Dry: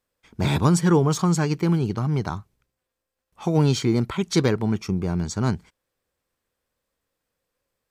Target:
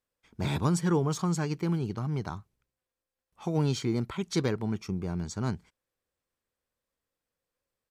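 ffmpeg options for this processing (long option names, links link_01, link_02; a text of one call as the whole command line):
ffmpeg -i in.wav -af "aresample=32000,aresample=44100,volume=-8dB" out.wav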